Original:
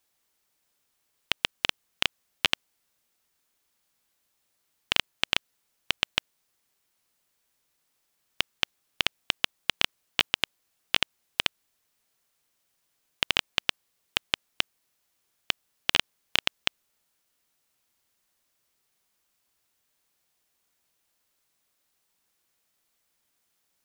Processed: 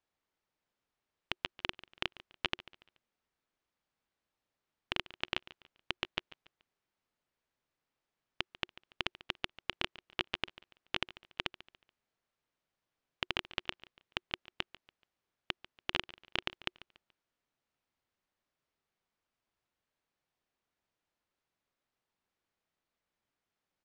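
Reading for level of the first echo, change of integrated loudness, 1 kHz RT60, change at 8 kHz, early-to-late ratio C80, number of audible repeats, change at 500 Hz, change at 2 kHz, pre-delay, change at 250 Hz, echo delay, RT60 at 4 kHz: −18.5 dB, −11.0 dB, no reverb audible, −19.5 dB, no reverb audible, 2, −5.0 dB, −9.5 dB, no reverb audible, −4.5 dB, 143 ms, no reverb audible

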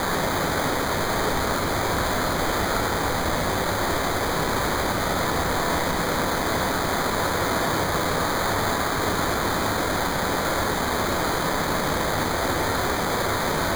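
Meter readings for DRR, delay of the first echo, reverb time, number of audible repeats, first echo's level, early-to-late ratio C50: 2.5 dB, no echo audible, 1.2 s, no echo audible, no echo audible, 5.5 dB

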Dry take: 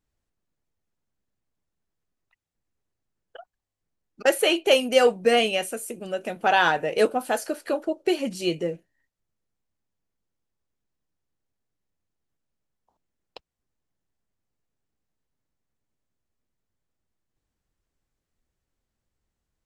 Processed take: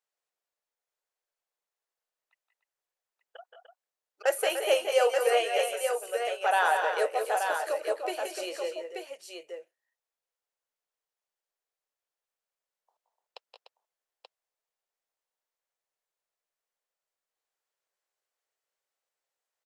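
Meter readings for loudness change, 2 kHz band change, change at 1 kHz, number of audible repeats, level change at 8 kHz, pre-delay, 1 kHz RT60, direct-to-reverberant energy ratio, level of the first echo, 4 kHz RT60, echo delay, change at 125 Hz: −4.5 dB, −4.5 dB, −2.5 dB, 3, −3.0 dB, no reverb audible, no reverb audible, no reverb audible, −8.0 dB, no reverb audible, 173 ms, below −40 dB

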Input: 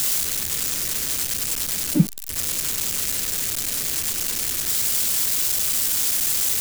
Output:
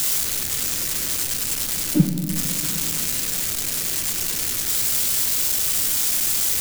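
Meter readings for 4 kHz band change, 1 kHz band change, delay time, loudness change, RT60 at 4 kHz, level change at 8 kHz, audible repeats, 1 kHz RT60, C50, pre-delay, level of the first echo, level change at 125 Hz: +0.5 dB, +1.0 dB, no echo audible, +0.5 dB, 1.2 s, +0.5 dB, no echo audible, 1.9 s, 8.0 dB, 6 ms, no echo audible, +2.0 dB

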